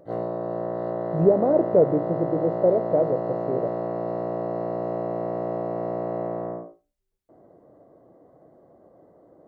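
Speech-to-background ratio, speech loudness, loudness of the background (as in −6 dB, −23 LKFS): 6.0 dB, −23.0 LKFS, −29.0 LKFS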